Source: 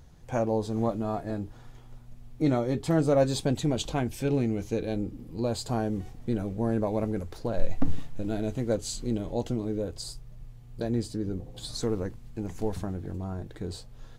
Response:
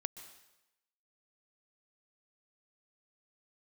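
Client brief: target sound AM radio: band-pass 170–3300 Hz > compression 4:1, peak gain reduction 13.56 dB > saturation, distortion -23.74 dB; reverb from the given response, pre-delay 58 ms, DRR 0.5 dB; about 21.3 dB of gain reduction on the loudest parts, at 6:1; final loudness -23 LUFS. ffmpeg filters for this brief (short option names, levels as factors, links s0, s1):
-filter_complex "[0:a]acompressor=threshold=0.0126:ratio=6,asplit=2[s0][s1];[1:a]atrim=start_sample=2205,adelay=58[s2];[s1][s2]afir=irnorm=-1:irlink=0,volume=1.12[s3];[s0][s3]amix=inputs=2:normalize=0,highpass=170,lowpass=3300,acompressor=threshold=0.00398:ratio=4,asoftclip=threshold=0.0126,volume=28.2"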